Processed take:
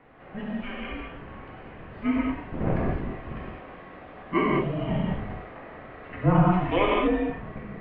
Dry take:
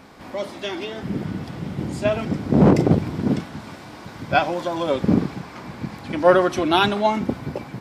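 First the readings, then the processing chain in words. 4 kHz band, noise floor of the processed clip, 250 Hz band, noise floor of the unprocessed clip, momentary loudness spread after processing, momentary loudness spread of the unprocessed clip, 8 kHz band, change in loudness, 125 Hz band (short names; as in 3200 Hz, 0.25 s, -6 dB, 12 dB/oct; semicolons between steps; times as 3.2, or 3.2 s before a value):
-11.5 dB, -45 dBFS, -6.0 dB, -40 dBFS, 20 LU, 18 LU, n/a, -5.5 dB, -4.0 dB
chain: non-linear reverb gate 0.24 s flat, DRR -4.5 dB; mistuned SSB -380 Hz 450–3000 Hz; gain -7.5 dB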